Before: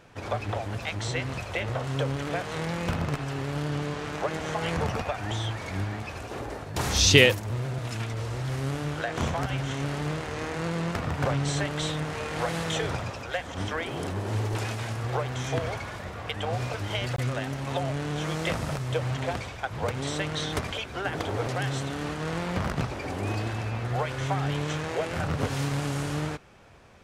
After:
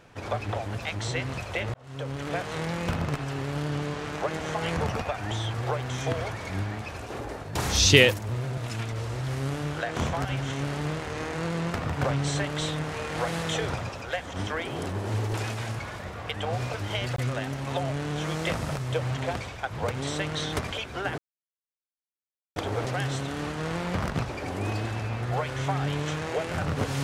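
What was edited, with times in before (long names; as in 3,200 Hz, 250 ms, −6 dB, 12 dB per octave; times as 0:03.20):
0:01.74–0:02.35: fade in
0:15.00–0:15.79: move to 0:05.54
0:21.18: splice in silence 1.38 s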